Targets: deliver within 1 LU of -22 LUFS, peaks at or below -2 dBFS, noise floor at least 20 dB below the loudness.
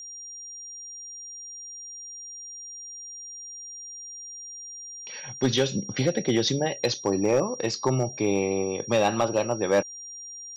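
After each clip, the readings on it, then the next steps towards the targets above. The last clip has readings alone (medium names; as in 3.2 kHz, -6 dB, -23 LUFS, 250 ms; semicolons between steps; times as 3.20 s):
clipped samples 0.3%; clipping level -14.5 dBFS; steady tone 5.7 kHz; tone level -38 dBFS; loudness -28.5 LUFS; peak level -14.5 dBFS; loudness target -22.0 LUFS
-> clip repair -14.5 dBFS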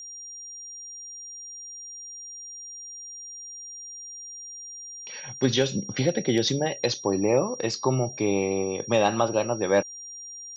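clipped samples 0.0%; steady tone 5.7 kHz; tone level -38 dBFS
-> band-stop 5.7 kHz, Q 30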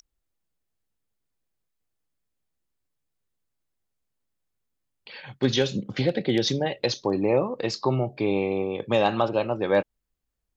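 steady tone not found; loudness -25.0 LUFS; peak level -8.0 dBFS; loudness target -22.0 LUFS
-> trim +3 dB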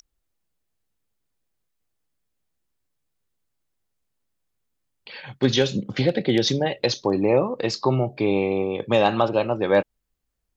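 loudness -22.0 LUFS; peak level -5.0 dBFS; noise floor -78 dBFS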